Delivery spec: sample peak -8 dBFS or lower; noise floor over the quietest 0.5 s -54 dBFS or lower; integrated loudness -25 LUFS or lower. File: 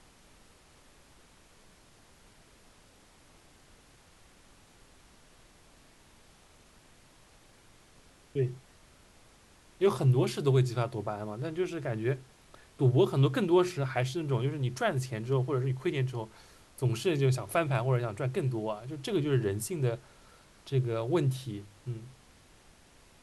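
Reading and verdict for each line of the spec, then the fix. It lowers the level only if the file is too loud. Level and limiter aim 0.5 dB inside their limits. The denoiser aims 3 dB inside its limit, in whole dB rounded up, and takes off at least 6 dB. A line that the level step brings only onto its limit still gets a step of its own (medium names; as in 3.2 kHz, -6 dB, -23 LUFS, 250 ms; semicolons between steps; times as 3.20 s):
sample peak -13.0 dBFS: pass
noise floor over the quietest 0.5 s -59 dBFS: pass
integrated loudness -30.5 LUFS: pass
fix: none needed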